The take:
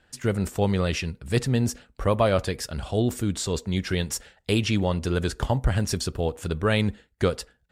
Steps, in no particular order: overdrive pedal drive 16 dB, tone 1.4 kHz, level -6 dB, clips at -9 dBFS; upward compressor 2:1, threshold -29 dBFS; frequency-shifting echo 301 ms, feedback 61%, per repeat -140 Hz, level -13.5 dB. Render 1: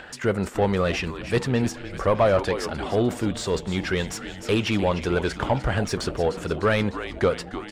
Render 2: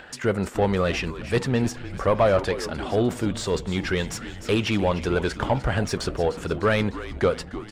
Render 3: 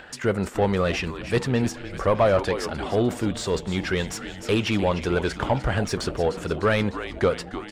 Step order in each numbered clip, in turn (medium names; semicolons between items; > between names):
frequency-shifting echo > upward compressor > overdrive pedal; overdrive pedal > frequency-shifting echo > upward compressor; frequency-shifting echo > overdrive pedal > upward compressor